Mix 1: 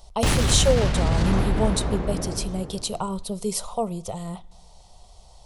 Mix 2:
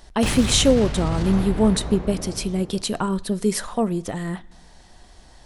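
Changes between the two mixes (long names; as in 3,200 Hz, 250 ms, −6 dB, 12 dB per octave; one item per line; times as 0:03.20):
speech: remove phaser with its sweep stopped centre 700 Hz, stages 4
background −4.0 dB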